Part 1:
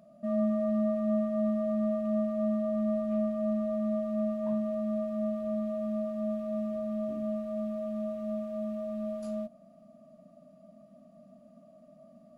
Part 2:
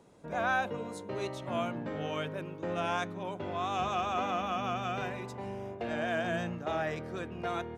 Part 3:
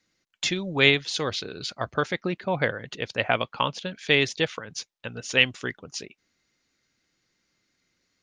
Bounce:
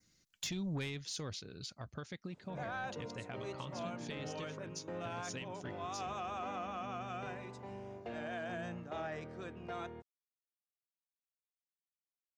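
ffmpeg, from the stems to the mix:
-filter_complex "[1:a]lowpass=f=8.1k:w=0.5412,lowpass=f=8.1k:w=1.3066,adelay=2250,volume=-7.5dB[a];[2:a]bass=f=250:g=12,treble=f=4k:g=11,acompressor=threshold=-24dB:ratio=8,volume=-5dB,afade=t=out:st=0.83:d=0.61:silence=0.266073[b];[a][b]amix=inputs=2:normalize=0,adynamicequalizer=threshold=0.00158:dfrequency=3600:dqfactor=1.8:tfrequency=3600:tqfactor=1.8:attack=5:release=100:ratio=0.375:range=2.5:mode=cutabove:tftype=bell,asoftclip=type=tanh:threshold=-27.5dB,alimiter=level_in=9dB:limit=-24dB:level=0:latency=1:release=37,volume=-9dB"

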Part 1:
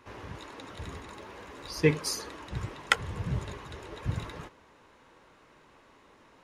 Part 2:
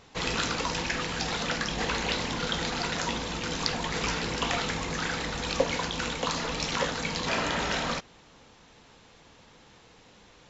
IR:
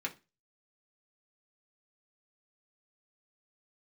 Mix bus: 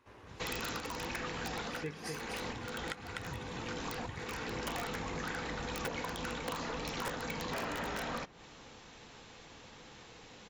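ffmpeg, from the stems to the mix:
-filter_complex "[0:a]volume=-11dB,asplit=3[a][b][c];[b]volume=-6dB[d];[1:a]aeval=exprs='(mod(8.91*val(0)+1,2)-1)/8.91':c=same,adynamicequalizer=threshold=0.00562:dfrequency=2100:dqfactor=0.7:tfrequency=2100:tqfactor=0.7:attack=5:release=100:ratio=0.375:range=3.5:mode=cutabove:tftype=highshelf,adelay=250,volume=1dB,asplit=2[e][f];[f]volume=-15.5dB[g];[c]apad=whole_len=473761[h];[e][h]sidechaincompress=threshold=-51dB:ratio=8:attack=6.2:release=401[i];[2:a]atrim=start_sample=2205[j];[g][j]afir=irnorm=-1:irlink=0[k];[d]aecho=0:1:249:1[l];[a][i][k][l]amix=inputs=4:normalize=0,acompressor=threshold=-38dB:ratio=3"

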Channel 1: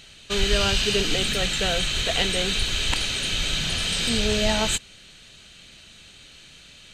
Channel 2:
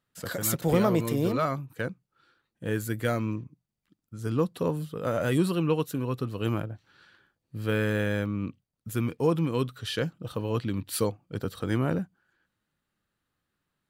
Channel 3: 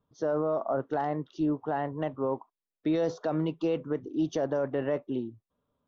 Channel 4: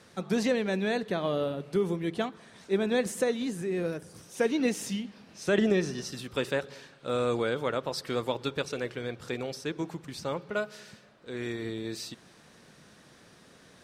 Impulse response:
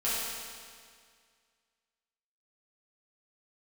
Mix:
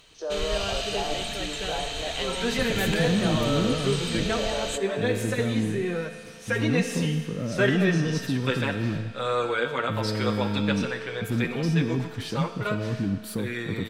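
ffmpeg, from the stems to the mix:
-filter_complex "[0:a]volume=-9dB,asplit=2[a][b];[b]volume=-22dB[c];[1:a]asoftclip=type=tanh:threshold=-27.5dB,equalizer=f=210:t=o:w=2.1:g=12,acrossover=split=300[d][e];[e]acompressor=threshold=-37dB:ratio=2.5[f];[d][f]amix=inputs=2:normalize=0,adelay=2350,volume=-2dB,asplit=2[g][h];[h]volume=-21dB[i];[2:a]agate=range=-20dB:threshold=-54dB:ratio=16:detection=peak,highpass=f=370:w=0.5412,highpass=f=370:w=1.3066,acompressor=mode=upward:threshold=-34dB:ratio=2.5,volume=-7.5dB,asplit=3[j][k][l];[k]volume=-5.5dB[m];[3:a]equalizer=f=1.9k:w=0.48:g=8.5,asplit=2[n][o];[o]adelay=7.6,afreqshift=-1.1[p];[n][p]amix=inputs=2:normalize=1,adelay=2100,volume=-0.5dB,asplit=2[q][r];[r]volume=-13dB[s];[l]apad=whole_len=703285[t];[q][t]sidechaincompress=threshold=-37dB:ratio=8:attack=16:release=1040[u];[4:a]atrim=start_sample=2205[v];[c][i][m][s]amix=inputs=4:normalize=0[w];[w][v]afir=irnorm=-1:irlink=0[x];[a][g][j][u][x]amix=inputs=5:normalize=0"

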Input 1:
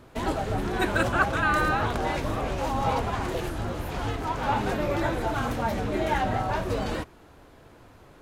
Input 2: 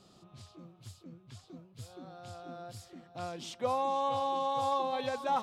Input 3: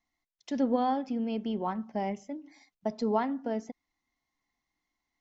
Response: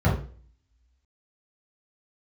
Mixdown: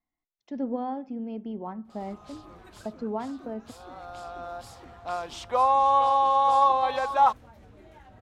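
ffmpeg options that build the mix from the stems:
-filter_complex "[0:a]equalizer=f=71:w=1.2:g=7.5,acompressor=threshold=-33dB:ratio=10,adelay=1850,volume=-15dB[a];[1:a]highpass=f=480:p=1,equalizer=f=1k:w=0.83:g=12,adelay=1900,volume=2dB[b];[2:a]lowpass=f=1k:p=1,volume=-2.5dB,asplit=2[c][d];[d]apad=whole_len=443811[e];[a][e]sidechaincompress=threshold=-35dB:ratio=3:attack=6.4:release=934[f];[f][b][c]amix=inputs=3:normalize=0"

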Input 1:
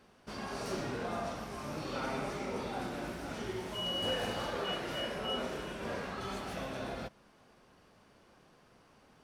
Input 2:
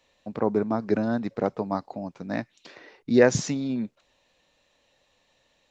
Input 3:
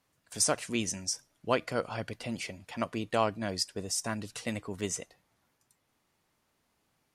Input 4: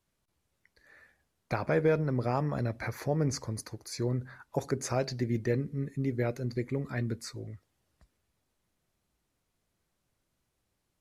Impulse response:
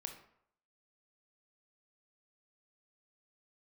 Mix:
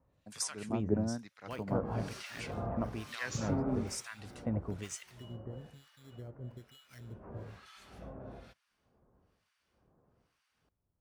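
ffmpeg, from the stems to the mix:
-filter_complex "[0:a]equalizer=f=470:w=1.5:g=2.5,adelay=1450,volume=10.5dB,afade=t=out:st=3.75:d=0.38:silence=0.354813,afade=t=out:st=5.06:d=0.69:silence=0.281838,afade=t=in:st=6.92:d=0.65:silence=0.223872[a];[1:a]volume=-9dB[b];[2:a]highshelf=f=3.9k:g=-7.5,acompressor=threshold=-30dB:ratio=5,volume=-1dB[c];[3:a]acompressor=threshold=-37dB:ratio=6,acrusher=samples=12:mix=1:aa=0.000001,volume=-8.5dB[d];[a][b][c][d]amix=inputs=4:normalize=0,equalizer=f=67:t=o:w=2.3:g=12,acrossover=split=1300[e][f];[e]aeval=exprs='val(0)*(1-1/2+1/2*cos(2*PI*1.1*n/s))':c=same[g];[f]aeval=exprs='val(0)*(1-1/2-1/2*cos(2*PI*1.1*n/s))':c=same[h];[g][h]amix=inputs=2:normalize=0"

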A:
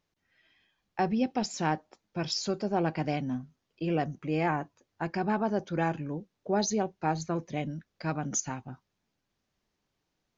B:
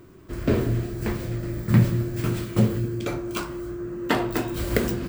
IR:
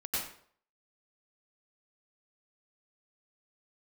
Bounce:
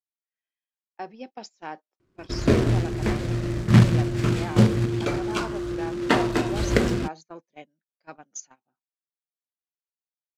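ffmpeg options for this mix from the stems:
-filter_complex "[0:a]highpass=350,volume=-6.5dB[a];[1:a]acrusher=bits=3:mode=log:mix=0:aa=0.000001,lowpass=6.4k,adelay=2000,volume=2.5dB[b];[a][b]amix=inputs=2:normalize=0,agate=range=-23dB:threshold=-40dB:ratio=16:detection=peak"

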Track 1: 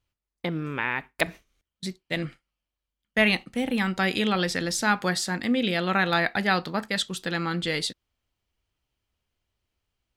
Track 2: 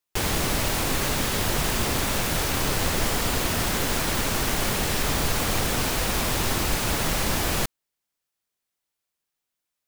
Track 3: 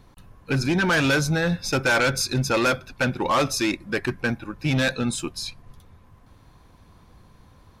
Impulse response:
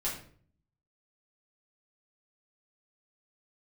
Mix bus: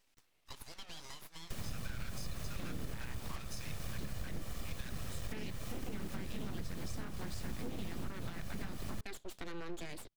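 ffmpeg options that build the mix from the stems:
-filter_complex "[0:a]adelay=2150,volume=-5dB[a];[1:a]aecho=1:1:1.7:0.66,adelay=1350,volume=-10.5dB[b];[2:a]highpass=1.4k,volume=-8dB[c];[a][b]amix=inputs=2:normalize=0,alimiter=limit=-18.5dB:level=0:latency=1:release=492,volume=0dB[d];[c][d]amix=inputs=2:normalize=0,acrossover=split=210[e][f];[f]acompressor=threshold=-45dB:ratio=6[g];[e][g]amix=inputs=2:normalize=0,aeval=exprs='abs(val(0))':c=same,acompressor=threshold=-34dB:ratio=6"

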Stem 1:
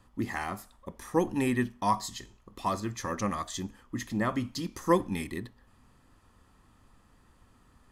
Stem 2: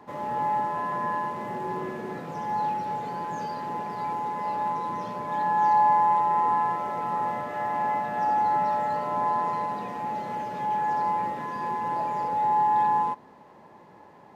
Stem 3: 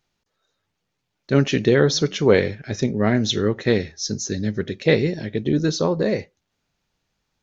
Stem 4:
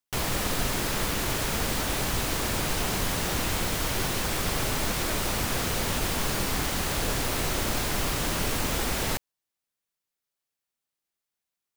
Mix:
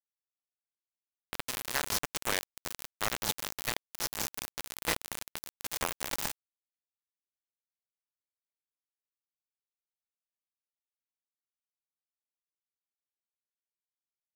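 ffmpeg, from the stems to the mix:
-filter_complex "[0:a]aemphasis=mode=reproduction:type=riaa,volume=-15.5dB[a];[1:a]highpass=63,asplit=2[b][c];[c]highpass=f=720:p=1,volume=21dB,asoftclip=type=tanh:threshold=-12.5dB[d];[b][d]amix=inputs=2:normalize=0,lowpass=f=2k:p=1,volume=-6dB,adelay=700,volume=-16.5dB[e];[2:a]highpass=f=810:w=0.5412,highpass=f=810:w=1.3066,equalizer=f=4.2k:w=0.45:g=-13.5,volume=-1.5dB,asplit=2[f][g];[3:a]asplit=2[h][i];[i]afreqshift=-0.29[j];[h][j]amix=inputs=2:normalize=1,adelay=1350,volume=-13dB,afade=t=in:st=6.05:d=0.51:silence=0.446684[k];[g]apad=whole_len=578367[l];[k][l]sidechaingate=range=-33dB:threshold=-57dB:ratio=16:detection=peak[m];[a][e][f]amix=inputs=3:normalize=0,adynamicequalizer=threshold=0.00224:dfrequency=320:dqfactor=3.5:tfrequency=320:tqfactor=3.5:attack=5:release=100:ratio=0.375:range=2:mode=cutabove:tftype=bell,acompressor=threshold=-44dB:ratio=2.5,volume=0dB[n];[m][n]amix=inputs=2:normalize=0,highshelf=f=4k:g=6,dynaudnorm=f=190:g=11:m=10.5dB,acrusher=bits=3:mix=0:aa=0.000001"

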